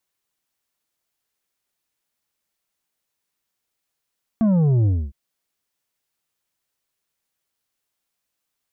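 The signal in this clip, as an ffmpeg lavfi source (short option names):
-f lavfi -i "aevalsrc='0.178*clip((0.71-t)/0.26,0,1)*tanh(2.24*sin(2*PI*230*0.71/log(65/230)*(exp(log(65/230)*t/0.71)-1)))/tanh(2.24)':d=0.71:s=44100"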